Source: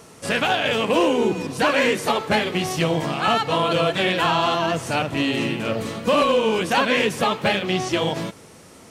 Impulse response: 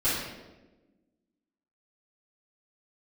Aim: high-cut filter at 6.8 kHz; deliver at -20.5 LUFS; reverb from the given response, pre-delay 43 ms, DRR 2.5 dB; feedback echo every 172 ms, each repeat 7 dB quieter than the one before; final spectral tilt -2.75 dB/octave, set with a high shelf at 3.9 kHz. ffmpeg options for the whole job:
-filter_complex "[0:a]lowpass=6800,highshelf=f=3900:g=5.5,aecho=1:1:172|344|516|688|860:0.447|0.201|0.0905|0.0407|0.0183,asplit=2[s0][s1];[1:a]atrim=start_sample=2205,adelay=43[s2];[s1][s2]afir=irnorm=-1:irlink=0,volume=0.2[s3];[s0][s3]amix=inputs=2:normalize=0,volume=0.668"

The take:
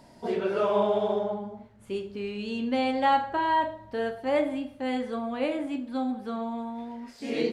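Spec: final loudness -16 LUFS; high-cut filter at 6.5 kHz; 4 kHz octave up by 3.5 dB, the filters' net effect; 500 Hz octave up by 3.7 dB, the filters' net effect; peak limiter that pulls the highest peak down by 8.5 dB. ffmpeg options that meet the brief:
-af "lowpass=6500,equalizer=f=500:t=o:g=4.5,equalizer=f=4000:t=o:g=5,volume=4.47,alimiter=limit=0.501:level=0:latency=1"

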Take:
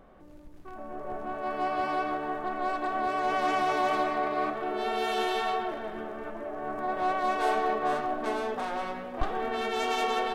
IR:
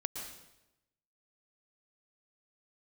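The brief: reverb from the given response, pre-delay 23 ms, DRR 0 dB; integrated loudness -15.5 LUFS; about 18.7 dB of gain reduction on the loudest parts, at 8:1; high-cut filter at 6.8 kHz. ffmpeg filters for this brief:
-filter_complex "[0:a]lowpass=6800,acompressor=threshold=0.00891:ratio=8,asplit=2[s0][s1];[1:a]atrim=start_sample=2205,adelay=23[s2];[s1][s2]afir=irnorm=-1:irlink=0,volume=0.891[s3];[s0][s3]amix=inputs=2:normalize=0,volume=17.8"

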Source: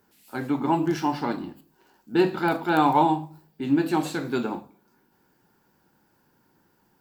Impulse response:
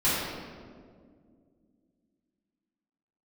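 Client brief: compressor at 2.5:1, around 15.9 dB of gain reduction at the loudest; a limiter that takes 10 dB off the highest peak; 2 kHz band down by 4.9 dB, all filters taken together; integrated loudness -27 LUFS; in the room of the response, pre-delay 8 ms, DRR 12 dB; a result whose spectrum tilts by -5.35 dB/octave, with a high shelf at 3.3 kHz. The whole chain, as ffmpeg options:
-filter_complex "[0:a]equalizer=f=2000:t=o:g=-9,highshelf=f=3300:g=4.5,acompressor=threshold=0.00891:ratio=2.5,alimiter=level_in=3.35:limit=0.0631:level=0:latency=1,volume=0.299,asplit=2[s0][s1];[1:a]atrim=start_sample=2205,adelay=8[s2];[s1][s2]afir=irnorm=-1:irlink=0,volume=0.0501[s3];[s0][s3]amix=inputs=2:normalize=0,volume=7.08"

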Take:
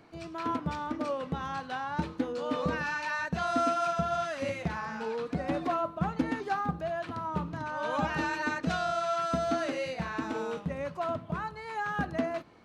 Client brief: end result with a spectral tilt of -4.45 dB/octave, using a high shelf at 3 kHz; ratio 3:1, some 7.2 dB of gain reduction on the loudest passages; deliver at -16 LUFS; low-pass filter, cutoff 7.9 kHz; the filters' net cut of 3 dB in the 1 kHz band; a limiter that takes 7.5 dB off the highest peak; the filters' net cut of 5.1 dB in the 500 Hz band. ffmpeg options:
-af "lowpass=7900,equalizer=f=500:t=o:g=-6,equalizer=f=1000:t=o:g=-3.5,highshelf=f=3000:g=7,acompressor=threshold=0.0158:ratio=3,volume=15.8,alimiter=limit=0.473:level=0:latency=1"

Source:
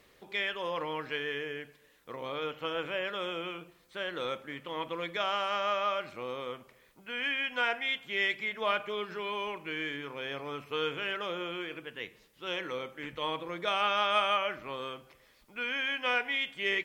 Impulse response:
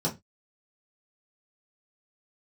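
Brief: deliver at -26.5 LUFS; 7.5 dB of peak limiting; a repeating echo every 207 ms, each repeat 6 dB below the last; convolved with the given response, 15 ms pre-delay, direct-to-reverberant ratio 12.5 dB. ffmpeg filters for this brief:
-filter_complex "[0:a]alimiter=limit=0.0841:level=0:latency=1,aecho=1:1:207|414|621|828|1035|1242:0.501|0.251|0.125|0.0626|0.0313|0.0157,asplit=2[s0][s1];[1:a]atrim=start_sample=2205,adelay=15[s2];[s1][s2]afir=irnorm=-1:irlink=0,volume=0.0944[s3];[s0][s3]amix=inputs=2:normalize=0,volume=2.11"

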